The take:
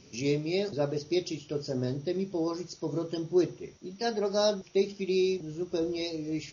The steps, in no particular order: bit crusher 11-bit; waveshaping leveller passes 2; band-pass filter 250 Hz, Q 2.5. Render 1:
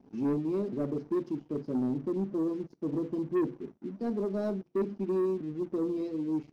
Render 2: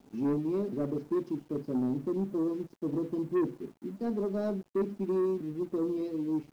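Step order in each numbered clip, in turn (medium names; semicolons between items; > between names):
bit crusher > band-pass filter > waveshaping leveller; band-pass filter > waveshaping leveller > bit crusher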